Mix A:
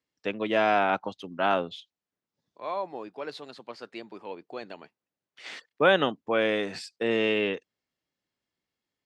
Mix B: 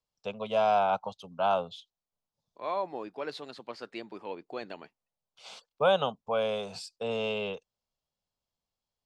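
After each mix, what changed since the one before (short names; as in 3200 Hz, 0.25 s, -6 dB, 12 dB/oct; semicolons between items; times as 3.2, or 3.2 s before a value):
first voice: add fixed phaser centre 770 Hz, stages 4; master: remove HPF 72 Hz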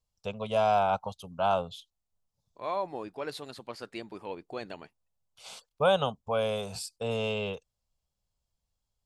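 master: remove three-band isolator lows -14 dB, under 160 Hz, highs -18 dB, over 6600 Hz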